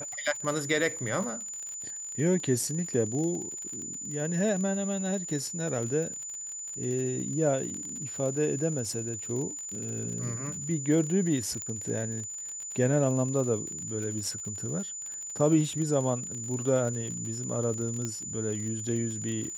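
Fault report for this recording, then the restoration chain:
surface crackle 50 per second −35 dBFS
whistle 7,000 Hz −36 dBFS
0:11.62: click −20 dBFS
0:18.05: click −20 dBFS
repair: click removal
notch filter 7,000 Hz, Q 30

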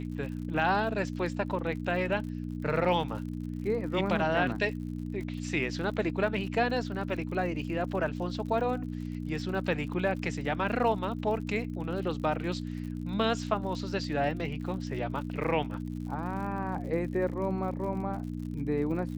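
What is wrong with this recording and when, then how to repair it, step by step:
surface crackle 60 per second −40 dBFS
mains hum 60 Hz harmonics 5 −36 dBFS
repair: click removal
hum removal 60 Hz, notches 5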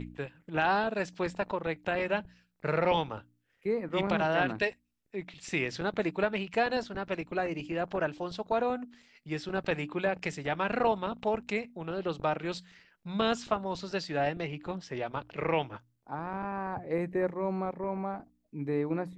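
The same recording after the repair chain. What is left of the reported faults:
none of them is left

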